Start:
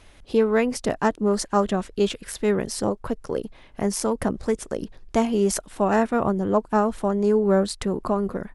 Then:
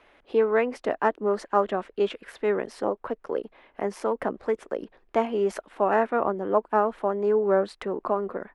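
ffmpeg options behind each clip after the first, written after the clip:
-filter_complex "[0:a]acrossover=split=290 2900:gain=0.1 1 0.0891[a][b][c];[a][b][c]amix=inputs=3:normalize=0"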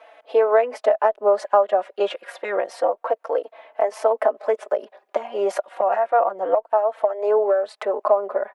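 -filter_complex "[0:a]highpass=f=630:t=q:w=4.3,acompressor=threshold=-20dB:ratio=6,asplit=2[a][b];[b]adelay=4,afreqshift=-0.29[c];[a][c]amix=inputs=2:normalize=1,volume=7.5dB"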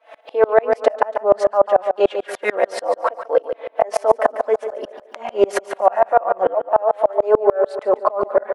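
-af "aecho=1:1:142|284|426|568|710:0.251|0.116|0.0532|0.0244|0.0112,alimiter=level_in=14dB:limit=-1dB:release=50:level=0:latency=1,aeval=exprs='val(0)*pow(10,-30*if(lt(mod(-6.8*n/s,1),2*abs(-6.8)/1000),1-mod(-6.8*n/s,1)/(2*abs(-6.8)/1000),(mod(-6.8*n/s,1)-2*abs(-6.8)/1000)/(1-2*abs(-6.8)/1000))/20)':c=same"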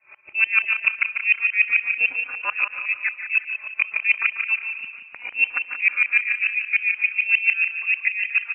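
-af "aecho=1:1:179|358|537|716:0.316|0.123|0.0481|0.0188,lowpass=f=2.6k:t=q:w=0.5098,lowpass=f=2.6k:t=q:w=0.6013,lowpass=f=2.6k:t=q:w=0.9,lowpass=f=2.6k:t=q:w=2.563,afreqshift=-3100,volume=-5dB"

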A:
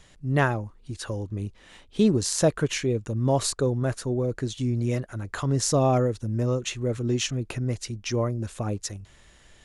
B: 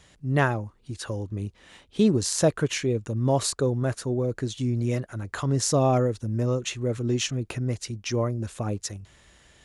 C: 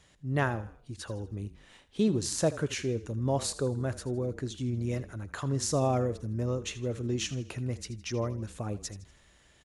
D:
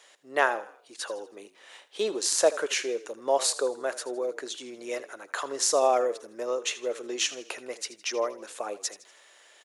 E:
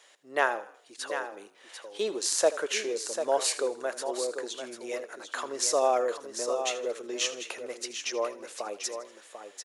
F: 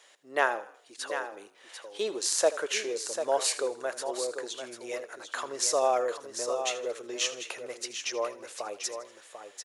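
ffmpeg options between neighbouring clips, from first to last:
-af "highpass=43"
-filter_complex "[0:a]asplit=5[a][b][c][d][e];[b]adelay=80,afreqshift=-31,volume=-16dB[f];[c]adelay=160,afreqshift=-62,volume=-22.9dB[g];[d]adelay=240,afreqshift=-93,volume=-29.9dB[h];[e]adelay=320,afreqshift=-124,volume=-36.8dB[i];[a][f][g][h][i]amix=inputs=5:normalize=0,volume=-6dB"
-af "highpass=f=450:w=0.5412,highpass=f=450:w=1.3066,volume=7.5dB"
-af "aecho=1:1:744:0.376,volume=-2dB"
-af "asubboost=boost=8:cutoff=76"

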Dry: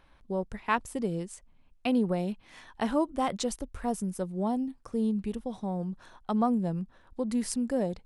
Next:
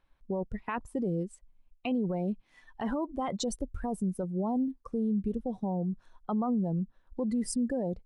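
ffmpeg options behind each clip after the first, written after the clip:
-filter_complex "[0:a]afftdn=nr=19:nf=-37,asplit=2[a][b];[b]acompressor=threshold=-38dB:ratio=6,volume=-1dB[c];[a][c]amix=inputs=2:normalize=0,alimiter=limit=-23.5dB:level=0:latency=1:release=11"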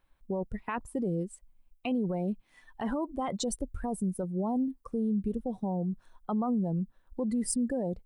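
-af "aexciter=amount=1.1:drive=9:freq=8.1k"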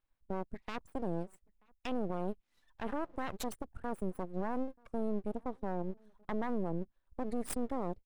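-filter_complex "[0:a]aeval=exprs='0.112*(cos(1*acos(clip(val(0)/0.112,-1,1)))-cos(1*PI/2))+0.0447*(cos(4*acos(clip(val(0)/0.112,-1,1)))-cos(4*PI/2))+0.00794*(cos(6*acos(clip(val(0)/0.112,-1,1)))-cos(6*PI/2))+0.00631*(cos(7*acos(clip(val(0)/0.112,-1,1)))-cos(7*PI/2))':c=same,asplit=2[a][b];[b]adelay=932.9,volume=-28dB,highshelf=f=4k:g=-21[c];[a][c]amix=inputs=2:normalize=0,aeval=exprs='abs(val(0))':c=same,volume=-8dB"

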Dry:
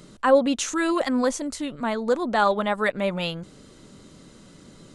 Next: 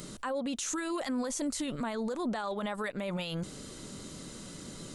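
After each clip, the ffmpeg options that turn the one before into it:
-af "highshelf=f=5.5k:g=10,acompressor=threshold=-27dB:ratio=12,alimiter=level_in=5dB:limit=-24dB:level=0:latency=1:release=16,volume=-5dB,volume=2.5dB"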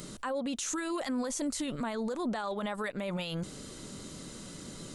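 -af anull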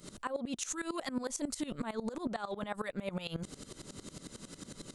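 -af "aeval=exprs='val(0)*pow(10,-19*if(lt(mod(-11*n/s,1),2*abs(-11)/1000),1-mod(-11*n/s,1)/(2*abs(-11)/1000),(mod(-11*n/s,1)-2*abs(-11)/1000)/(1-2*abs(-11)/1000))/20)':c=same,volume=2.5dB"

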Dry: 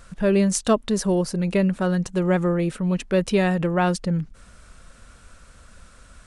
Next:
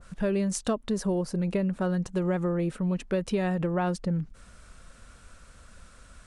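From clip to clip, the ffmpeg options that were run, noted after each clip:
-af "acompressor=threshold=-20dB:ratio=6,adynamicequalizer=threshold=0.00708:dfrequency=1600:dqfactor=0.7:tfrequency=1600:tqfactor=0.7:attack=5:release=100:ratio=0.375:range=3:mode=cutabove:tftype=highshelf,volume=-3dB"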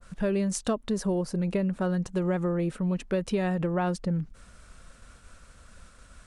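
-af "agate=range=-33dB:threshold=-49dB:ratio=3:detection=peak"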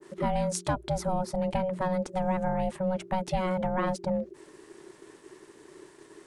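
-af "aeval=exprs='val(0)*sin(2*PI*370*n/s)':c=same,bandreject=f=60:t=h:w=6,bandreject=f=120:t=h:w=6,bandreject=f=180:t=h:w=6,volume=2dB"

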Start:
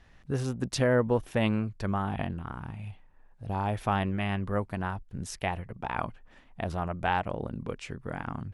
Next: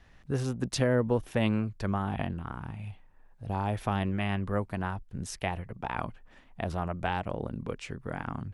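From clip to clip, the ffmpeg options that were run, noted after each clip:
-filter_complex "[0:a]acrossover=split=460|3000[a][b][c];[b]acompressor=threshold=-29dB:ratio=6[d];[a][d][c]amix=inputs=3:normalize=0"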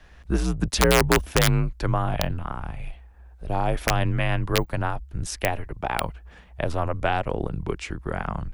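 -af "aeval=exprs='(mod(5.96*val(0)+1,2)-1)/5.96':c=same,afreqshift=-77,volume=7.5dB"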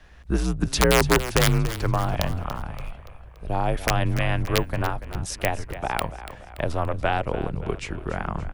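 -filter_complex "[0:a]asplit=6[a][b][c][d][e][f];[b]adelay=286,afreqshift=-35,volume=-13dB[g];[c]adelay=572,afreqshift=-70,volume=-19dB[h];[d]adelay=858,afreqshift=-105,volume=-25dB[i];[e]adelay=1144,afreqshift=-140,volume=-31.1dB[j];[f]adelay=1430,afreqshift=-175,volume=-37.1dB[k];[a][g][h][i][j][k]amix=inputs=6:normalize=0"

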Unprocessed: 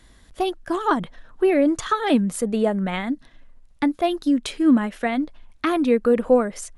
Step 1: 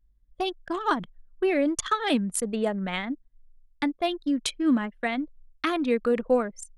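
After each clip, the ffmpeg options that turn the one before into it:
-af "anlmdn=39.8,highshelf=f=2k:g=11,volume=-6.5dB"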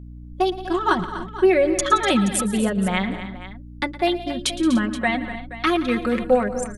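-af "aecho=1:1:5.4:0.75,aeval=exprs='val(0)+0.00891*(sin(2*PI*60*n/s)+sin(2*PI*2*60*n/s)/2+sin(2*PI*3*60*n/s)/3+sin(2*PI*4*60*n/s)/4+sin(2*PI*5*60*n/s)/5)':c=same,aecho=1:1:114|173|246|294|476:0.141|0.141|0.224|0.106|0.178,volume=4dB"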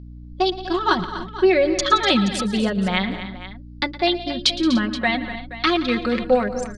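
-af "lowpass=f=4.6k:t=q:w=3.5"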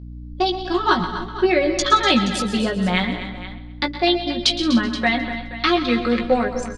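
-filter_complex "[0:a]asplit=2[a][b];[b]adelay=17,volume=-6dB[c];[a][c]amix=inputs=2:normalize=0,aecho=1:1:130|260|390|520|650:0.2|0.0998|0.0499|0.0249|0.0125"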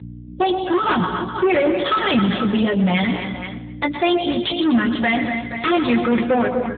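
-af "asoftclip=type=tanh:threshold=-19.5dB,volume=7dB" -ar 8000 -c:a libopencore_amrnb -b:a 7950

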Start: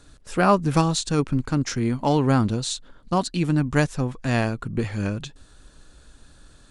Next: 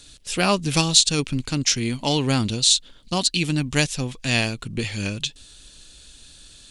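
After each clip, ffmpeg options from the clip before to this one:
-af "highshelf=f=2k:t=q:w=1.5:g=12.5,volume=-2dB"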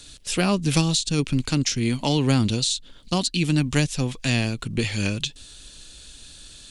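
-filter_complex "[0:a]acrossover=split=360[a][b];[b]acompressor=threshold=-26dB:ratio=4[c];[a][c]amix=inputs=2:normalize=0,volume=2.5dB"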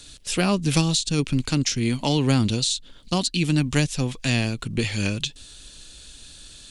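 -af anull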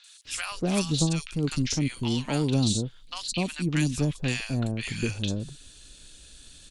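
-filter_complex "[0:a]acrossover=split=970|4300[a][b][c];[c]adelay=40[d];[a]adelay=250[e];[e][b][d]amix=inputs=3:normalize=0,volume=-4dB"

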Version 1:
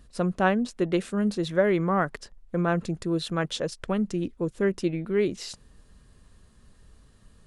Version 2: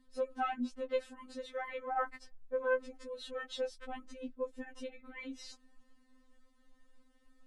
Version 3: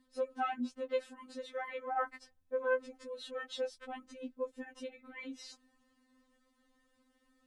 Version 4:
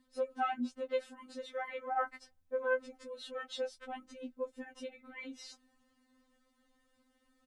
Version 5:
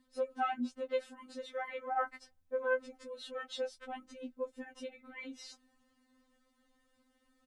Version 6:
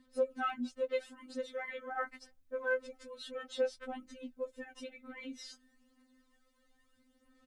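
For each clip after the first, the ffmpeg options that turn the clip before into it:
-af "highshelf=f=4.3k:g=-9.5,afftfilt=real='re*3.46*eq(mod(b,12),0)':imag='im*3.46*eq(mod(b,12),0)':win_size=2048:overlap=0.75,volume=-6dB"
-af "highpass=f=87:p=1"
-filter_complex "[0:a]asplit=2[a][b];[b]adelay=13,volume=-13dB[c];[a][c]amix=inputs=2:normalize=0"
-af anull
-af "aphaser=in_gain=1:out_gain=1:delay=4.5:decay=0.49:speed=0.27:type=sinusoidal,equalizer=f=870:w=4.3:g=-8"

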